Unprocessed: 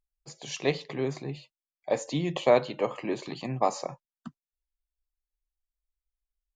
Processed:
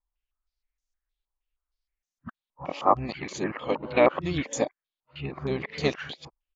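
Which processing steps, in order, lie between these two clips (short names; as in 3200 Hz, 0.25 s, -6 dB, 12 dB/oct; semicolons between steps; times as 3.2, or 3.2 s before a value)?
whole clip reversed; harmoniser -12 st -9 dB; stepped low-pass 6.4 Hz 980–6300 Hz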